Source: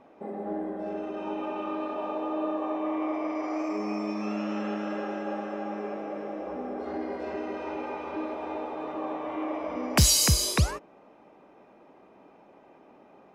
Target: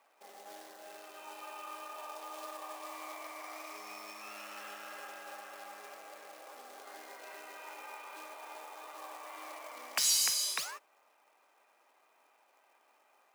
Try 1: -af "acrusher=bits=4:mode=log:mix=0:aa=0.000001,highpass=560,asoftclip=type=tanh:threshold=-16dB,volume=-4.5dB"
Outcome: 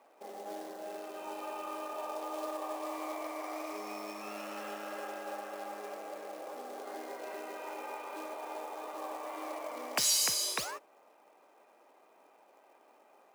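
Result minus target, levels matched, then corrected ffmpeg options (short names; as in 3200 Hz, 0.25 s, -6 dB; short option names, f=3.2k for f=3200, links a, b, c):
500 Hz band +9.5 dB
-af "acrusher=bits=4:mode=log:mix=0:aa=0.000001,highpass=1.2k,asoftclip=type=tanh:threshold=-16dB,volume=-4.5dB"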